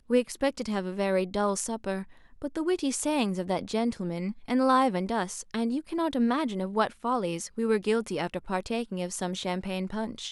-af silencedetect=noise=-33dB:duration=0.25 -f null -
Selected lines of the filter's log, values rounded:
silence_start: 2.02
silence_end: 2.42 | silence_duration: 0.40